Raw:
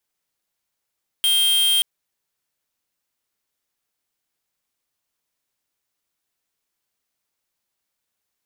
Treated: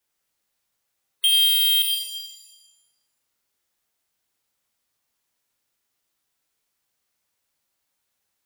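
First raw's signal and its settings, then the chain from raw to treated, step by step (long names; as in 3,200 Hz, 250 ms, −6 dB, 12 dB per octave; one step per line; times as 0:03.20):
tone square 3,190 Hz −17.5 dBFS 0.58 s
gate on every frequency bin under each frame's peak −30 dB strong
reverb with rising layers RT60 1.1 s, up +7 semitones, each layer −8 dB, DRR 0.5 dB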